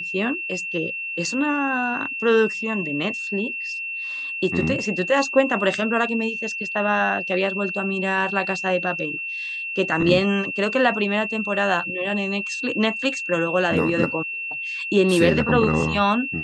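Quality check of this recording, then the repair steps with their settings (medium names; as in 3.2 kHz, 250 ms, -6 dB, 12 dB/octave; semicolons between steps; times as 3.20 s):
whine 2.7 kHz -27 dBFS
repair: band-stop 2.7 kHz, Q 30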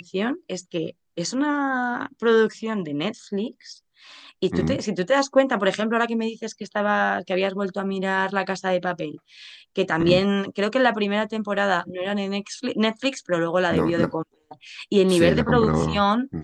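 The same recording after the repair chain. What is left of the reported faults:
nothing left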